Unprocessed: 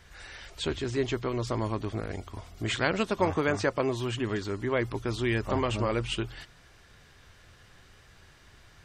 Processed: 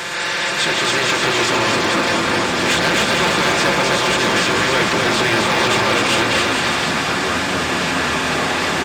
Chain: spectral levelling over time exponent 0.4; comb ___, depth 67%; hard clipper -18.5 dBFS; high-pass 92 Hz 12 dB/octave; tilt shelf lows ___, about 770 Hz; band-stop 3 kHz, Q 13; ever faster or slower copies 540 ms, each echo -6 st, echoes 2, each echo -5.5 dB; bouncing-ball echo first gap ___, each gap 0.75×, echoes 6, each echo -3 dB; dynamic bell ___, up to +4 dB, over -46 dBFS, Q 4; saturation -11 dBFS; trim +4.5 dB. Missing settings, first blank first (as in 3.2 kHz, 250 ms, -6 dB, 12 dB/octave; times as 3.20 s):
5.8 ms, -7 dB, 260 ms, 180 Hz